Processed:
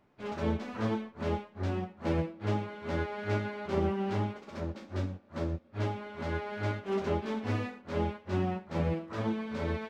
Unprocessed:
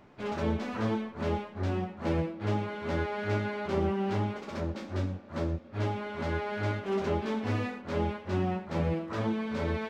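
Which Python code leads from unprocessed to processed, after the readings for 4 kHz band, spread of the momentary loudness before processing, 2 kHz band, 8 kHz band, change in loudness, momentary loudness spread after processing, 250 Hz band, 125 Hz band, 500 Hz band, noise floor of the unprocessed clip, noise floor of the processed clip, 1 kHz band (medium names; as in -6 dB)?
-2.5 dB, 4 LU, -2.5 dB, no reading, -2.0 dB, 5 LU, -2.0 dB, -1.5 dB, -2.0 dB, -47 dBFS, -57 dBFS, -2.5 dB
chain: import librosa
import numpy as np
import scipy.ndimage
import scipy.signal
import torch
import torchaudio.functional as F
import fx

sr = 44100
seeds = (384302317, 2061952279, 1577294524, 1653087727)

y = fx.upward_expand(x, sr, threshold_db=-48.0, expansion=1.5)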